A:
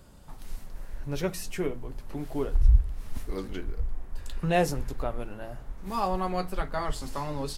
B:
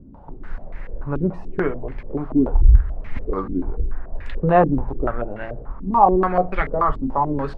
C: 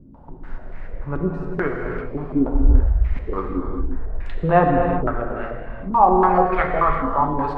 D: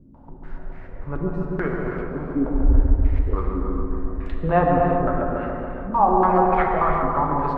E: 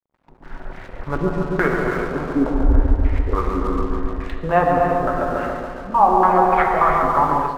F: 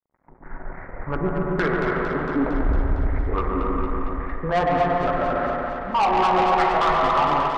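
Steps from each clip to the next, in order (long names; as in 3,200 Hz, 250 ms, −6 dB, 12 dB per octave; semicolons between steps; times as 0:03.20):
low-pass on a step sequencer 6.9 Hz 270–2,100 Hz; level +7 dB
dynamic equaliser 1,600 Hz, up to +4 dB, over −31 dBFS, Q 0.76; reverb whose tail is shaped and stops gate 410 ms flat, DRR 1.5 dB; level −2.5 dB
delay with a low-pass on its return 141 ms, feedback 73%, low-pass 1,300 Hz, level −3.5 dB; level −3.5 dB
low-shelf EQ 450 Hz −9 dB; dead-zone distortion −50 dBFS; automatic gain control gain up to 13 dB; level −1 dB
elliptic low-pass filter 2,100 Hz; soft clipping −15.5 dBFS, distortion −11 dB; on a send: feedback echo with a high-pass in the loop 228 ms, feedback 71%, high-pass 420 Hz, level −6 dB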